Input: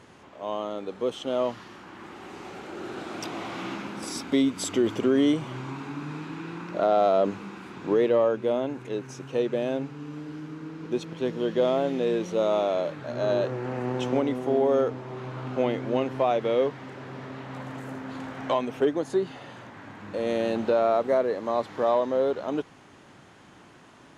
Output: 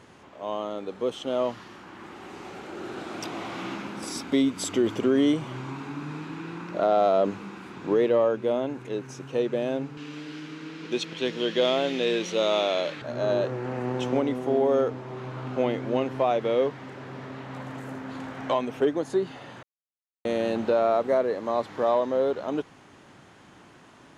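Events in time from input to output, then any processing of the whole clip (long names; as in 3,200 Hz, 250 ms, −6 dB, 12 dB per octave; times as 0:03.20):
0:09.97–0:13.02: meter weighting curve D
0:19.63–0:20.25: silence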